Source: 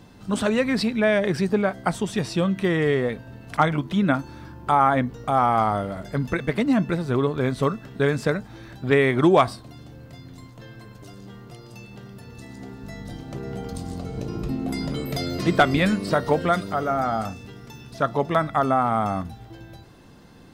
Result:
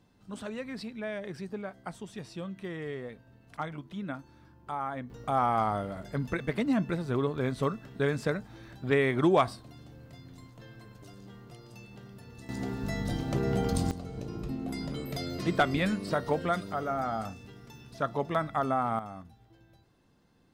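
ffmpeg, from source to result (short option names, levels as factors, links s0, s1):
-af "asetnsamples=n=441:p=0,asendcmd='5.1 volume volume -7dB;12.49 volume volume 4dB;13.91 volume volume -8dB;18.99 volume volume -17.5dB',volume=0.15"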